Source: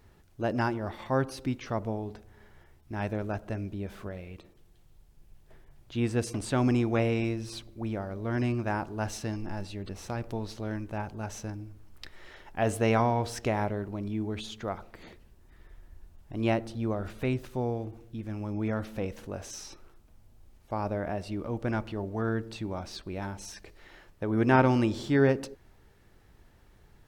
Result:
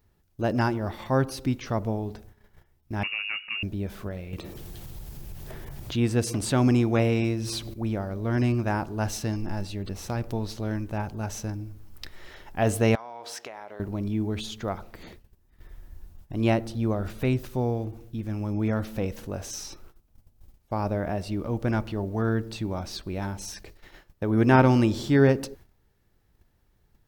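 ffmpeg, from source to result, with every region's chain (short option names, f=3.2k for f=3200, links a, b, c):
-filter_complex "[0:a]asettb=1/sr,asplit=3[a][b][c];[a]atrim=end=3.034[d];[b]atrim=start=3.03:end=3.63,asetpts=PTS-STARTPTS,afade=t=in:d=0.004:c=qsin,afade=t=out:st=0.596:d=0.004:c=qsin,aeval=exprs='clip(val(0),-1,0.0266)':c=same,lowpass=f=2.5k:t=q:w=0.5098,lowpass=f=2.5k:t=q:w=0.6013,lowpass=f=2.5k:t=q:w=0.9,lowpass=f=2.5k:t=q:w=2.563,afreqshift=-2900[e];[c]atrim=start=3.626[f];[d][e]acrossfade=d=0.004:c1=hsin:c2=qsin[g];[g][f]acrossfade=d=0.004:c1=qsin:c2=hsin,asettb=1/sr,asplit=3[h][i][j];[h]atrim=end=4.334[k];[i]atrim=start=4.33:end=7.74,asetpts=PTS-STARTPTS,afade=t=in:d=0.004:c=qsin,afade=t=out:st=3.406:d=0.004:c=qsin,highpass=f=50:p=1,acompressor=mode=upward:threshold=-29dB:ratio=2.5:attack=3.2:release=140:knee=2.83:detection=peak[l];[j]atrim=start=7.736[m];[k][l]acrossfade=d=0.004:c1=hsin:c2=qsin[n];[n][m]acrossfade=d=0.004:c1=qsin:c2=hsin,asettb=1/sr,asplit=3[o][p][q];[o]atrim=end=12.954[r];[p]atrim=start=12.95:end=13.8,asetpts=PTS-STARTPTS,afade=t=in:d=0.004:c=qsin,afade=t=out:st=0.846:d=0.004:c=qsin,highpass=610,highshelf=f=8k:g=-10,acompressor=threshold=-38dB:ratio=12:attack=3.2:release=140:knee=1:detection=peak[s];[q]atrim=start=13.796[t];[r][s]acrossfade=d=0.004:c1=hsin:c2=qsin[u];[u][t]acrossfade=d=0.004:c1=qsin:c2=hsin,equalizer=f=8.4k:t=o:w=1.8:g=-10,agate=range=-13dB:threshold=-52dB:ratio=16:detection=peak,bass=f=250:g=3,treble=f=4k:g=13,volume=3dB"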